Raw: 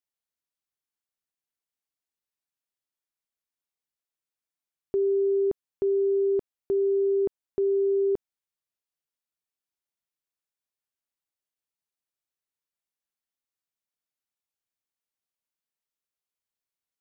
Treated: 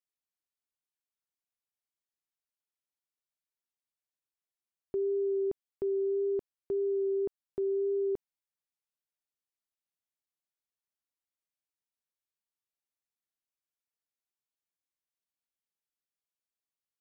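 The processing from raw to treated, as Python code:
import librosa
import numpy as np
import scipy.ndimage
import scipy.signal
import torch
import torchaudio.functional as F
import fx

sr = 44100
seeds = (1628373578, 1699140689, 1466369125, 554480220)

y = fx.vibrato(x, sr, rate_hz=1.8, depth_cents=16.0)
y = y * 10.0 ** (-6.5 / 20.0)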